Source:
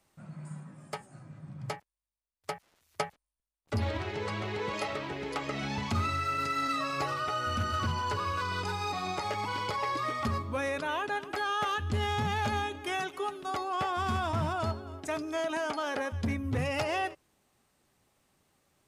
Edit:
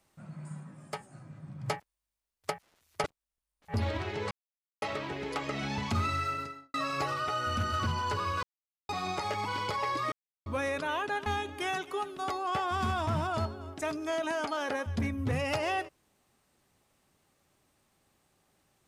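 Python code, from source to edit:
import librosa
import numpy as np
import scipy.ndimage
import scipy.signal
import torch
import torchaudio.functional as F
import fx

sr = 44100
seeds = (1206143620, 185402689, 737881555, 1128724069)

y = fx.studio_fade_out(x, sr, start_s=6.2, length_s=0.54)
y = fx.edit(y, sr, fx.clip_gain(start_s=1.66, length_s=0.84, db=4.0),
    fx.reverse_span(start_s=3.04, length_s=0.7),
    fx.silence(start_s=4.31, length_s=0.51),
    fx.silence(start_s=8.43, length_s=0.46),
    fx.silence(start_s=10.12, length_s=0.34),
    fx.cut(start_s=11.26, length_s=1.26), tone=tone)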